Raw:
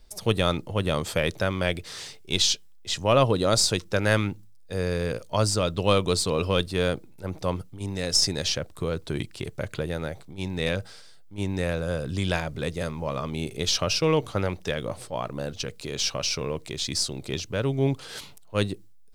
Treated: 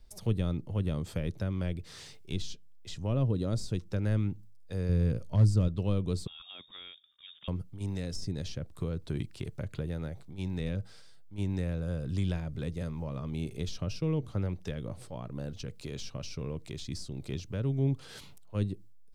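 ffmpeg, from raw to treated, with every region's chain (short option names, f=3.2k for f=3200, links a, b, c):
-filter_complex "[0:a]asettb=1/sr,asplit=3[a][b][c];[a]atrim=end=4.894[d];[b]atrim=start=4.89:end=5.68,asetpts=PTS-STARTPTS,afade=t=in:d=0.004:c=qsin,afade=t=out:st=0.786:d=0.004:c=qsin,lowshelf=f=250:g=8,aeval=exprs='0.299*(abs(mod(val(0)/0.299+3,4)-2)-1)':c=same[e];[c]atrim=start=5.676[f];[d][e]acrossfade=d=0.004:c1=hsin:c2=qsin[g];[g][f]acrossfade=d=0.004:c1=qsin:c2=hsin,asettb=1/sr,asplit=3[h][i][j];[h]atrim=end=6.274[k];[i]atrim=start=6.27:end=7.48,asetpts=PTS-STARTPTS,afade=t=in:d=0.004:c=qsin,afade=t=out:st=1.206:d=0.004:c=qsin,highpass=f=190:p=1,acompressor=threshold=-48dB:ratio=1.5:attack=3.2:release=140:knee=1:detection=peak,lowpass=f=3.2k:t=q:w=0.5098,lowpass=f=3.2k:t=q:w=0.6013,lowpass=f=3.2k:t=q:w=0.9,lowpass=f=3.2k:t=q:w=2.563,afreqshift=-3800[l];[j]atrim=start=7.476[m];[k][l]acrossfade=d=0.004:c1=hsin:c2=qsin[n];[n][m]acrossfade=d=0.004:c1=qsin:c2=hsin,bass=f=250:g=6,treble=f=4k:g=-1,acrossover=split=400[o][p];[p]acompressor=threshold=-37dB:ratio=4[q];[o][q]amix=inputs=2:normalize=0,volume=-7.5dB"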